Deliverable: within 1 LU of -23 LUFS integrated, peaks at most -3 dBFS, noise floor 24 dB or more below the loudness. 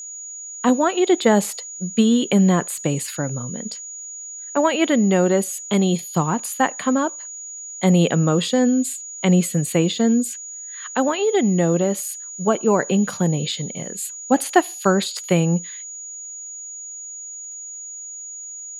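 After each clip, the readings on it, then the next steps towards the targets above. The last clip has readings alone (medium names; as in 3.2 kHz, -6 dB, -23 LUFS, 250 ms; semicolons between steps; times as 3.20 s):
tick rate 35 per s; steady tone 6.8 kHz; tone level -32 dBFS; loudness -20.0 LUFS; peak level -1.5 dBFS; loudness target -23.0 LUFS
-> de-click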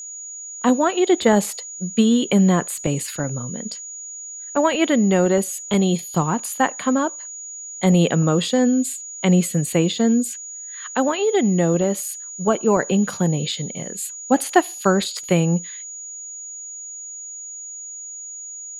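tick rate 0.21 per s; steady tone 6.8 kHz; tone level -32 dBFS
-> band-stop 6.8 kHz, Q 30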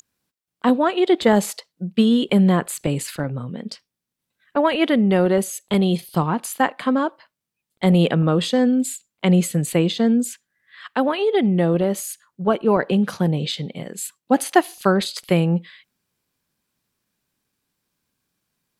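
steady tone not found; loudness -20.0 LUFS; peak level -1.5 dBFS; loudness target -23.0 LUFS
-> trim -3 dB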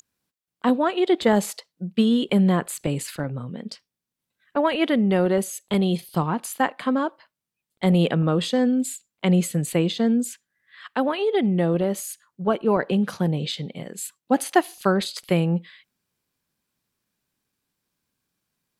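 loudness -23.0 LUFS; peak level -4.5 dBFS; noise floor -87 dBFS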